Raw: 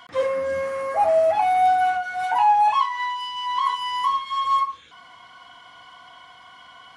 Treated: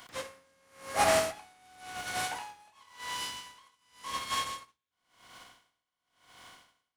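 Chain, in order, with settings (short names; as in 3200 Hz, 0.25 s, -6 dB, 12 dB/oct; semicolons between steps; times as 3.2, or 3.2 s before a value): spectral contrast lowered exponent 0.49; on a send at -15.5 dB: reverb RT60 0.50 s, pre-delay 3 ms; on the sum: dB-linear tremolo 0.93 Hz, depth 38 dB; gain -5.5 dB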